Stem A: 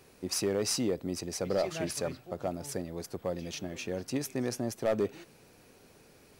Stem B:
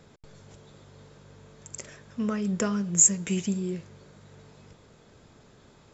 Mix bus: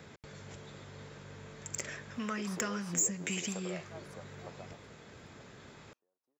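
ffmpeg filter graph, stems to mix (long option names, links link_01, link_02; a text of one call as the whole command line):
ffmpeg -i stem1.wav -i stem2.wav -filter_complex "[0:a]highpass=380,highshelf=frequency=1600:width_type=q:width=3:gain=-12.5,acompressor=threshold=-41dB:ratio=6,adelay=2150,volume=-3dB[link_01];[1:a]highpass=56,acrossover=split=840|5600[link_02][link_03][link_04];[link_02]acompressor=threshold=-41dB:ratio=4[link_05];[link_03]acompressor=threshold=-42dB:ratio=4[link_06];[link_04]acompressor=threshold=-31dB:ratio=4[link_07];[link_05][link_06][link_07]amix=inputs=3:normalize=0,asoftclip=type=tanh:threshold=-25dB,volume=2dB,asplit=2[link_08][link_09];[link_09]apad=whole_len=376820[link_10];[link_01][link_10]sidechaingate=range=-38dB:threshold=-49dB:ratio=16:detection=peak[link_11];[link_11][link_08]amix=inputs=2:normalize=0,equalizer=frequency=2000:width_type=o:width=1.1:gain=6.5" out.wav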